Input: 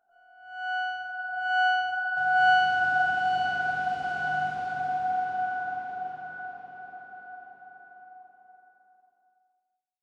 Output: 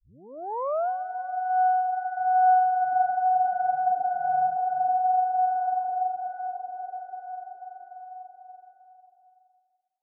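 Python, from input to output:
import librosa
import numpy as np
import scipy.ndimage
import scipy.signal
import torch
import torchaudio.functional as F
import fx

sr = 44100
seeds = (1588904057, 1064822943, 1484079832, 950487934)

p1 = fx.tape_start_head(x, sr, length_s=0.89)
p2 = fx.peak_eq(p1, sr, hz=660.0, db=12.0, octaves=2.2)
p3 = fx.rider(p2, sr, range_db=4, speed_s=0.5)
p4 = p2 + (p3 * 10.0 ** (-1.0 / 20.0))
p5 = fx.spec_topn(p4, sr, count=16)
p6 = fx.ladder_lowpass(p5, sr, hz=1100.0, resonance_pct=45)
p7 = p6 + fx.echo_feedback(p6, sr, ms=291, feedback_pct=56, wet_db=-23, dry=0)
y = p7 * 10.0 ** (-8.5 / 20.0)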